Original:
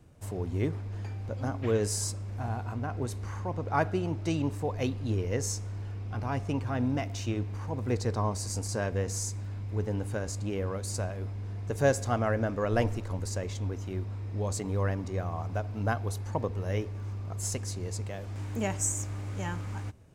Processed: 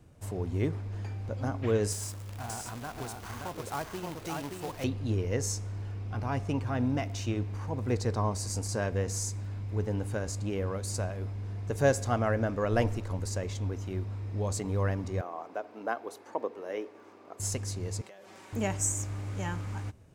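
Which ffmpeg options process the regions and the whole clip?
-filter_complex "[0:a]asettb=1/sr,asplit=3[s0][s1][s2];[s0]atrim=end=1.924[s3];[s1]atrim=start=1.92:end=4.84,asetpts=PTS-STARTPTS,afade=t=in:d=0.004:c=qsin,afade=t=out:st=2.916:d=0.004:c=qsin,acrossover=split=730|1800|5900[s4][s5][s6][s7];[s4]acompressor=threshold=0.01:ratio=3[s8];[s5]acompressor=threshold=0.01:ratio=3[s9];[s6]acompressor=threshold=0.002:ratio=3[s10];[s7]acompressor=threshold=0.0112:ratio=3[s11];[s8][s9][s10][s11]amix=inputs=4:normalize=0,acrusher=bits=2:mode=log:mix=0:aa=0.000001,aecho=1:1:576:0.668,atrim=end_sample=128772[s12];[s2]atrim=start=4.836[s13];[s3][s12]acrossfade=d=0.004:c1=hsin:c2=qsin[s14];[s14][s13]acrossfade=d=0.004:c1=qsin:c2=hsin,asettb=1/sr,asplit=3[s15][s16][s17];[s15]atrim=end=15.214[s18];[s16]atrim=start=15.21:end=17.4,asetpts=PTS-STARTPTS,afade=t=in:d=0.004:c=qsin,afade=t=out:st=2.186:d=0.004:c=qsin,highpass=f=300:w=0.5412,highpass=f=300:w=1.3066,equalizer=f=8500:t=o:w=2.8:g=-9[s19];[s17]atrim=start=17.396[s20];[s18][s19]acrossfade=d=0.004:c1=hsin:c2=qsin[s21];[s21][s20]acrossfade=d=0.004:c1=qsin:c2=hsin,asettb=1/sr,asplit=3[s22][s23][s24];[s22]atrim=end=18.014[s25];[s23]atrim=start=18.01:end=18.53,asetpts=PTS-STARTPTS,afade=t=in:d=0.004:c=qsin,afade=t=out:st=0.516:d=0.004:c=qsin,highpass=370,aecho=1:1:5.3:0.63,atrim=end_sample=22932,acompressor=threshold=0.00501:ratio=16:attack=3.2:release=140:knee=1:detection=peak[s26];[s24]atrim=start=18.526[s27];[s25][s26]acrossfade=d=0.004:c1=hsin:c2=qsin[s28];[s28][s27]acrossfade=d=0.004:c1=qsin:c2=hsin"

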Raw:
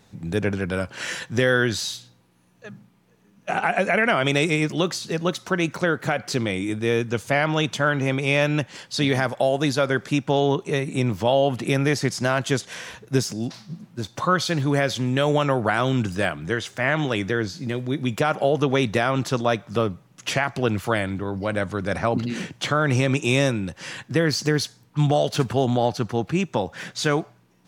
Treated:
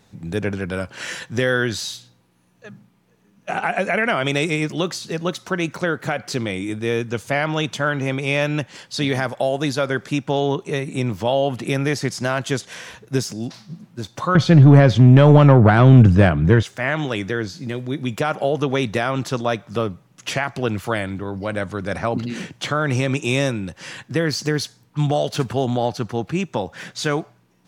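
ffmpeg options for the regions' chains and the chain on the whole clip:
-filter_complex "[0:a]asettb=1/sr,asplit=3[s0][s1][s2];[s0]atrim=end=14.354[s3];[s1]atrim=start=14.35:end=16.63,asetpts=PTS-STARTPTS,afade=t=in:d=0.004:c=qsin,afade=t=out:st=2.276:d=0.004:c=qsin,aemphasis=mode=reproduction:type=riaa,acontrast=63[s4];[s2]atrim=start=16.626[s5];[s3][s4]acrossfade=d=0.004:c1=hsin:c2=qsin[s6];[s6][s5]acrossfade=d=0.004:c1=qsin:c2=hsin"

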